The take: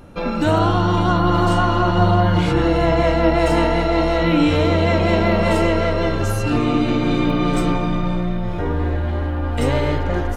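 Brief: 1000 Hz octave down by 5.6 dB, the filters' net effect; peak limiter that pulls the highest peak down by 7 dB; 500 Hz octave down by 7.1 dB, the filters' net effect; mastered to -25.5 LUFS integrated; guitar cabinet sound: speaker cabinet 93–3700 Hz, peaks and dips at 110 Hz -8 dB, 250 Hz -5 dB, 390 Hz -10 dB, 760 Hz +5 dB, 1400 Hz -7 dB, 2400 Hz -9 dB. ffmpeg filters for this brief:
-af "equalizer=f=500:t=o:g=-7,equalizer=f=1k:t=o:g=-5.5,alimiter=limit=-13dB:level=0:latency=1,highpass=93,equalizer=f=110:t=q:w=4:g=-8,equalizer=f=250:t=q:w=4:g=-5,equalizer=f=390:t=q:w=4:g=-10,equalizer=f=760:t=q:w=4:g=5,equalizer=f=1.4k:t=q:w=4:g=-7,equalizer=f=2.4k:t=q:w=4:g=-9,lowpass=f=3.7k:w=0.5412,lowpass=f=3.7k:w=1.3066,volume=1dB"

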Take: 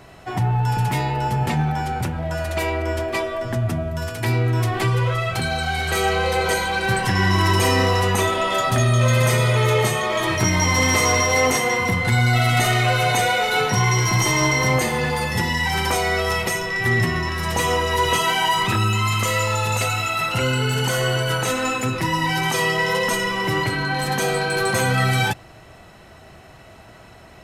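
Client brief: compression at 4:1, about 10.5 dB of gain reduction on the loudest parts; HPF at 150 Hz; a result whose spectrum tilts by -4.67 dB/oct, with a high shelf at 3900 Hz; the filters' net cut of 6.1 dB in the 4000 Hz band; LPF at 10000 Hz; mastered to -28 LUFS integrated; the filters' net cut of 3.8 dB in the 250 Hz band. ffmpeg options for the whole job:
-af "highpass=150,lowpass=10k,equalizer=f=250:t=o:g=-4,highshelf=f=3.9k:g=-8,equalizer=f=4k:t=o:g=-3.5,acompressor=threshold=-30dB:ratio=4,volume=3.5dB"

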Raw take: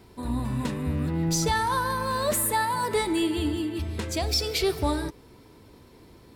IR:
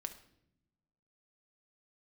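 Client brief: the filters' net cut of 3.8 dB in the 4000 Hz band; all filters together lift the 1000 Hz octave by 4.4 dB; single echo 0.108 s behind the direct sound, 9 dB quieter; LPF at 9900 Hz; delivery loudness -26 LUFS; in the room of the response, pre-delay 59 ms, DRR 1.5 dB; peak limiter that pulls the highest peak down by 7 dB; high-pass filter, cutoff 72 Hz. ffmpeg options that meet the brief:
-filter_complex "[0:a]highpass=72,lowpass=9.9k,equalizer=f=1k:t=o:g=5,equalizer=f=4k:t=o:g=-5,alimiter=limit=-19dB:level=0:latency=1,aecho=1:1:108:0.355,asplit=2[a][b];[1:a]atrim=start_sample=2205,adelay=59[c];[b][c]afir=irnorm=-1:irlink=0,volume=1dB[d];[a][d]amix=inputs=2:normalize=0,volume=-1.5dB"

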